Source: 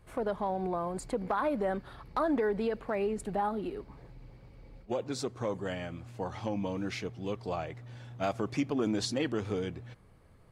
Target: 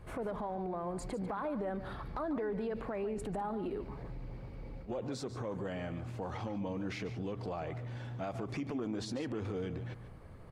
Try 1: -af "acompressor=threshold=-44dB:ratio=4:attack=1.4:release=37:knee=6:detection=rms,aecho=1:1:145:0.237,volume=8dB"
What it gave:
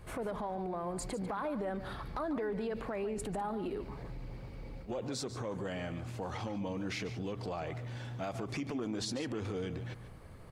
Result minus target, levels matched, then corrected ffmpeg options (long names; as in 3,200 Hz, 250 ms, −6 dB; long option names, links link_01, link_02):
4,000 Hz band +5.0 dB
-af "acompressor=threshold=-44dB:ratio=4:attack=1.4:release=37:knee=6:detection=rms,highshelf=frequency=2800:gain=-8.5,aecho=1:1:145:0.237,volume=8dB"